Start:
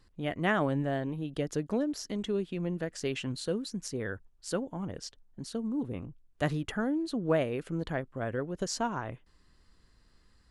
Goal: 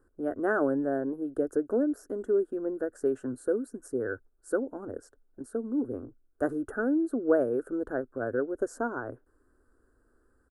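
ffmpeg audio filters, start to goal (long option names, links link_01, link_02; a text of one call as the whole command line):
ffmpeg -i in.wav -af "firequalizer=gain_entry='entry(120,0);entry(170,-18);entry(240,8);entry(400,13);entry(680,6);entry(970,-1);entry(1500,12);entry(2100,-23);entry(3500,-26);entry(8700,3)':delay=0.05:min_phase=1,volume=-5.5dB" out.wav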